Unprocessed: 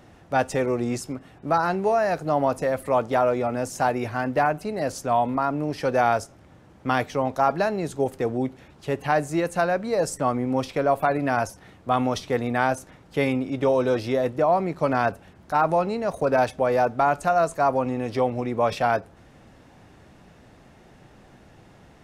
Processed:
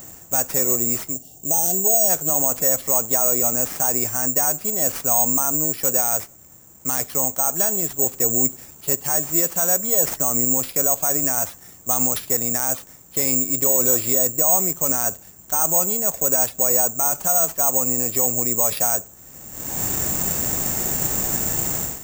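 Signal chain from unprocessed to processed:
bad sample-rate conversion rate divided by 6×, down none, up zero stuff
automatic gain control gain up to 16 dB
gain on a spectral selection 0:01.13–0:02.09, 850–2,700 Hz −21 dB
boost into a limiter +5.5 dB
level −1 dB

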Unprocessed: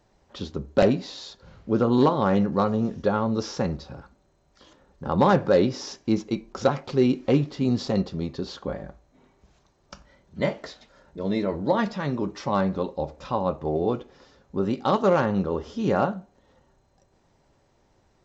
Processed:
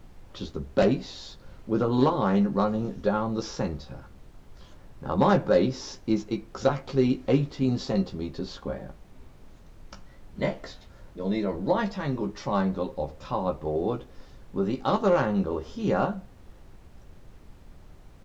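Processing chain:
double-tracking delay 15 ms −5.5 dB
background noise brown −43 dBFS
level −3.5 dB

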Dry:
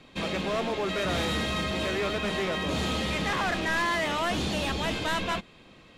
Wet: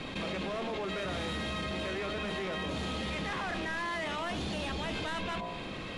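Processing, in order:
high-frequency loss of the air 69 metres
hum removal 58.48 Hz, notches 21
brickwall limiter −30.5 dBFS, peak gain reduction 10 dB
parametric band 10,000 Hz +10 dB 0.38 octaves
envelope flattener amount 70%

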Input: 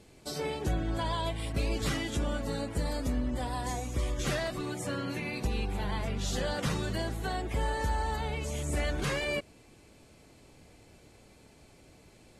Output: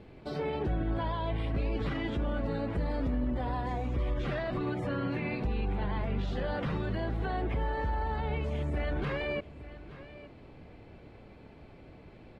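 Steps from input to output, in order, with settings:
on a send: single-tap delay 869 ms −22.5 dB
on the sum: brickwall limiter −29.5 dBFS, peak gain reduction 9.5 dB
high-frequency loss of the air 400 metres
level +6.5 dB

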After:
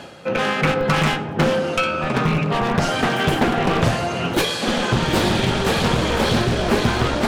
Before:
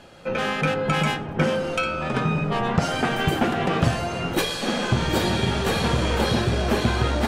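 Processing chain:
wavefolder on the positive side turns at −17.5 dBFS
high-pass filter 98 Hz 12 dB per octave
reversed playback
upward compression, threshold −27 dBFS
reversed playback
flanger 0.41 Hz, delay 6.9 ms, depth 6.2 ms, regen −89%
in parallel at −10 dB: comparator with hysteresis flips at −20.5 dBFS
on the sum: highs frequency-modulated by the lows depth 0.38 ms
level +9 dB

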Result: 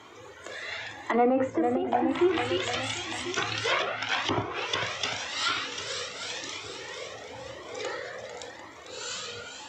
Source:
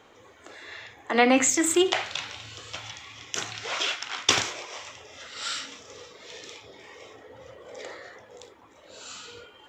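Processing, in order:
high-pass filter 81 Hz 24 dB per octave
feedback echo with a long and a short gap by turns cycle 746 ms, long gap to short 1.5 to 1, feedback 35%, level −10 dB
treble cut that deepens with the level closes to 730 Hz, closed at −22.5 dBFS
on a send at −17.5 dB: convolution reverb, pre-delay 3 ms
on the sum: boost into a limiter +19 dB
flanger whose copies keep moving one way rising 0.92 Hz
level −8.5 dB

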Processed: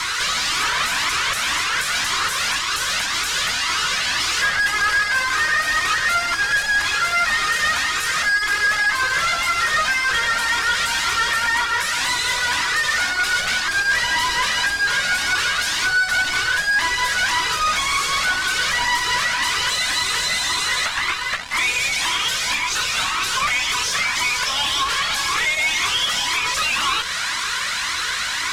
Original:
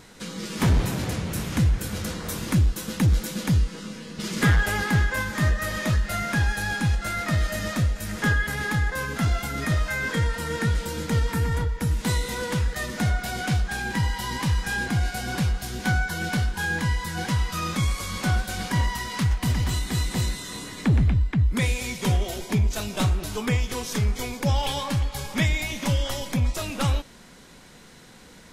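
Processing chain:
Butterworth high-pass 1,000 Hz 72 dB per octave
downward compressor 3 to 1, threshold −43 dBFS, peak gain reduction 16 dB
fuzz pedal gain 57 dB, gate −59 dBFS
high-frequency loss of the air 59 metres
flanger whose copies keep moving one way rising 1.9 Hz

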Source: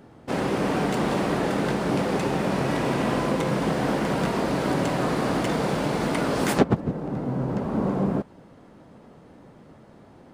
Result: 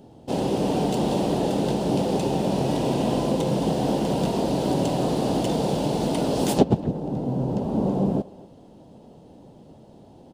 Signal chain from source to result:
flat-topped bell 1,600 Hz −14 dB 1.3 octaves
far-end echo of a speakerphone 240 ms, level −19 dB
level +1.5 dB

